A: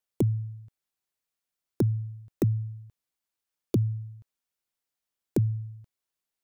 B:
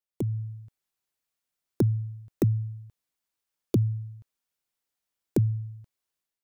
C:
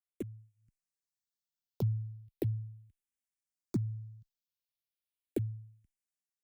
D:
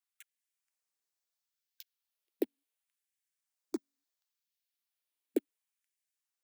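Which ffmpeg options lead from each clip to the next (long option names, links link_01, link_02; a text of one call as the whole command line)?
ffmpeg -i in.wav -af "dynaudnorm=framelen=130:gausssize=5:maxgain=9dB,volume=-7.5dB" out.wav
ffmpeg -i in.wav -filter_complex "[0:a]acrossover=split=300|1700[link_01][link_02][link_03];[link_02]acrusher=bits=6:mix=0:aa=0.000001[link_04];[link_01][link_04][link_03]amix=inputs=3:normalize=0,asplit=2[link_05][link_06];[link_06]afreqshift=-0.37[link_07];[link_05][link_07]amix=inputs=2:normalize=1,volume=-6.5dB" out.wav
ffmpeg -i in.wav -af "afftfilt=real='re*gte(b*sr/1024,230*pow(1600/230,0.5+0.5*sin(2*PI*0.71*pts/sr)))':imag='im*gte(b*sr/1024,230*pow(1600/230,0.5+0.5*sin(2*PI*0.71*pts/sr)))':win_size=1024:overlap=0.75,volume=3.5dB" out.wav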